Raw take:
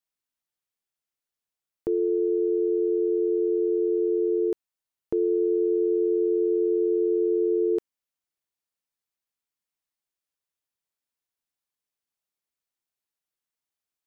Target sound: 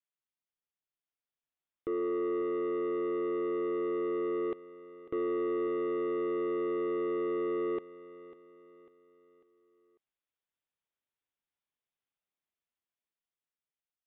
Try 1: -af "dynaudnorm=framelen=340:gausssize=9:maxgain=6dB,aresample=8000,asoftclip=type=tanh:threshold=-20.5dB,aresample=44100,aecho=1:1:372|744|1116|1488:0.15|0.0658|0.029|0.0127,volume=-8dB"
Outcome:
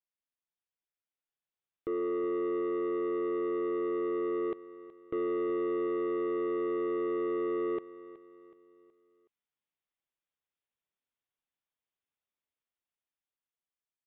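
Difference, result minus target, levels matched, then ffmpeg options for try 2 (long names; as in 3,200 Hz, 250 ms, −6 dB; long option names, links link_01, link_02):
echo 175 ms early
-af "dynaudnorm=framelen=340:gausssize=9:maxgain=6dB,aresample=8000,asoftclip=type=tanh:threshold=-20.5dB,aresample=44100,aecho=1:1:547|1094|1641|2188:0.15|0.0658|0.029|0.0127,volume=-8dB"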